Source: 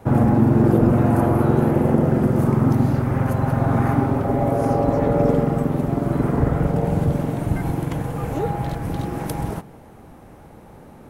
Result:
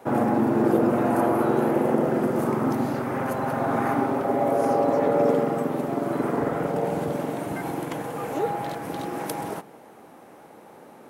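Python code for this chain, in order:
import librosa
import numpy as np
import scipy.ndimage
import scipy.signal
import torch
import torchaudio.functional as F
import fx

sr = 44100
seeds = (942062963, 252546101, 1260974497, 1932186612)

y = scipy.signal.sosfilt(scipy.signal.butter(2, 310.0, 'highpass', fs=sr, output='sos'), x)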